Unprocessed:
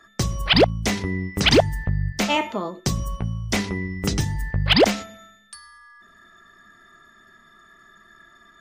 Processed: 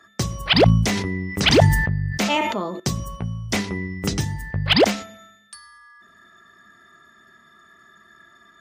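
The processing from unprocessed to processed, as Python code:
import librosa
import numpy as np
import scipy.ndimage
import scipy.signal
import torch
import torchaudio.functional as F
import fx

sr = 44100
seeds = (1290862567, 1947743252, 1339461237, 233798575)

y = scipy.signal.sosfilt(scipy.signal.butter(2, 69.0, 'highpass', fs=sr, output='sos'), x)
y = fx.sustainer(y, sr, db_per_s=40.0, at=(0.58, 2.8))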